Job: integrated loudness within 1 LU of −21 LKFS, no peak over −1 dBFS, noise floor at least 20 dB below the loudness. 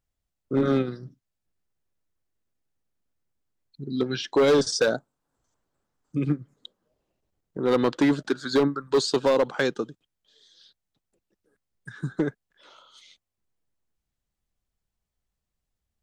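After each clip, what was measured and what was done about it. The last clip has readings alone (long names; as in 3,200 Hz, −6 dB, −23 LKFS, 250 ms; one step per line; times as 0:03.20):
share of clipped samples 1.0%; peaks flattened at −15.0 dBFS; integrated loudness −25.0 LKFS; sample peak −15.0 dBFS; target loudness −21.0 LKFS
→ clipped peaks rebuilt −15 dBFS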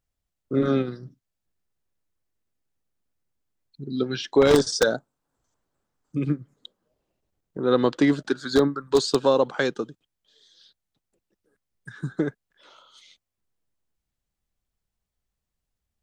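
share of clipped samples 0.0%; integrated loudness −23.5 LKFS; sample peak −6.0 dBFS; target loudness −21.0 LKFS
→ level +2.5 dB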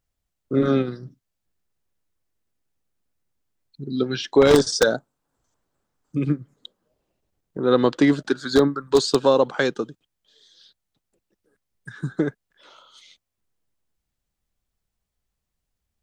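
integrated loudness −21.0 LKFS; sample peak −3.5 dBFS; background noise floor −81 dBFS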